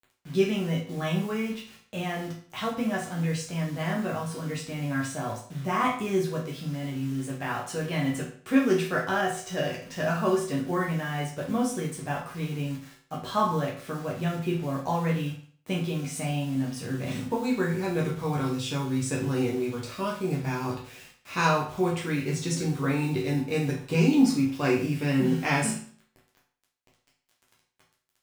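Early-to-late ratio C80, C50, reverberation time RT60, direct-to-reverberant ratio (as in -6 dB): 10.5 dB, 6.5 dB, 0.50 s, -4.0 dB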